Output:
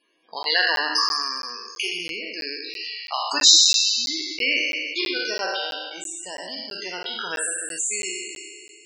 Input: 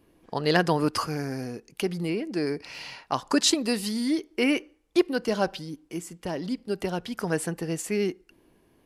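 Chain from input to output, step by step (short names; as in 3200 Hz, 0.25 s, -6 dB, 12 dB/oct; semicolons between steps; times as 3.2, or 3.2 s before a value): spectral trails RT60 2.15 s; weighting filter ITU-R 468; loudest bins only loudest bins 64; notches 50/100/150/200/250/300/350/400/450 Hz; crackling interface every 0.33 s, samples 512, zero, from 0.43; gain -3 dB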